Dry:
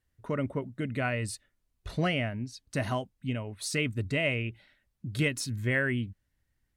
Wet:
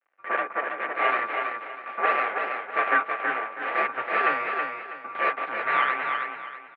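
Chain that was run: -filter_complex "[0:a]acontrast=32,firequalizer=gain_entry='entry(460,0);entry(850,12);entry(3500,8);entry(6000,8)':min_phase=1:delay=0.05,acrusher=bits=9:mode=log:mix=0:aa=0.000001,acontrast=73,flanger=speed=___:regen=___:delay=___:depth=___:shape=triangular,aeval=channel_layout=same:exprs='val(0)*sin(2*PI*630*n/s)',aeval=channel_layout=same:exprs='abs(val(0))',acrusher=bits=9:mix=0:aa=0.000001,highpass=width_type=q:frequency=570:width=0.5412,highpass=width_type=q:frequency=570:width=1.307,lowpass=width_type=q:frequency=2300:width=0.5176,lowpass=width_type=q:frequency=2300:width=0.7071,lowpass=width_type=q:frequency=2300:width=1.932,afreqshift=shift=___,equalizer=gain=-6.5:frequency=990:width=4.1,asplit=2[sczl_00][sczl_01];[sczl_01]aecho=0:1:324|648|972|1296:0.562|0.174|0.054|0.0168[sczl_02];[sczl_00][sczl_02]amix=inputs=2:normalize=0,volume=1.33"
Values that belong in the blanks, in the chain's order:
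0.74, -1, 7.5, 9, -92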